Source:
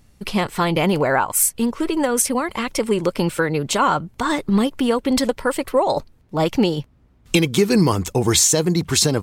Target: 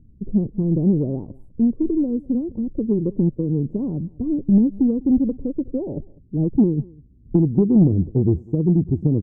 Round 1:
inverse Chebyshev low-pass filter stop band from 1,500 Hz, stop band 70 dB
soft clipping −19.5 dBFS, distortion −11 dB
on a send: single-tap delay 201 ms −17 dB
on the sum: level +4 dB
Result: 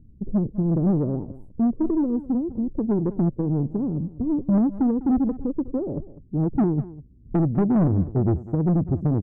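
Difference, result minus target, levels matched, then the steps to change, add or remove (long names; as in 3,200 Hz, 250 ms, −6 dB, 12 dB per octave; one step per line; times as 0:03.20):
soft clipping: distortion +14 dB; echo-to-direct +7 dB
change: soft clipping −8.5 dBFS, distortion −25 dB
change: single-tap delay 201 ms −24 dB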